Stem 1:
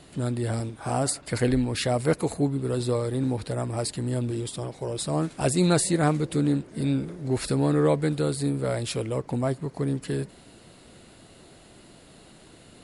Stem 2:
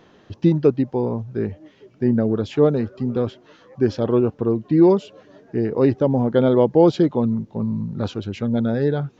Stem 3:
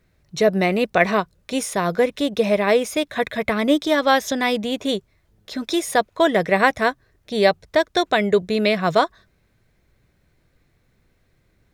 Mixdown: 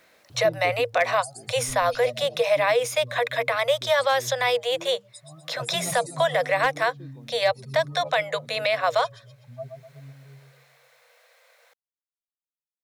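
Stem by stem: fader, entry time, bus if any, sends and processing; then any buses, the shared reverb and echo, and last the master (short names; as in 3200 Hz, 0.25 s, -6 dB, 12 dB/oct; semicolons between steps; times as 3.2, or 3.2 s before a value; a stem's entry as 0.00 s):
-7.0 dB, 0.15 s, no send, echo send -5.5 dB, per-bin expansion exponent 3; fixed phaser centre 310 Hz, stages 8; comb 1.6 ms, depth 69%
-15.5 dB, 0.00 s, no send, no echo send, notches 50/100/150/200 Hz; auto duck -15 dB, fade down 1.85 s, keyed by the third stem
+0.5 dB, 0.00 s, no send, no echo send, Chebyshev high-pass 470 Hz, order 10; three-band squash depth 40%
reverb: off
echo: feedback echo 0.124 s, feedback 41%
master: overloaded stage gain 7.5 dB; limiter -12 dBFS, peak gain reduction 4.5 dB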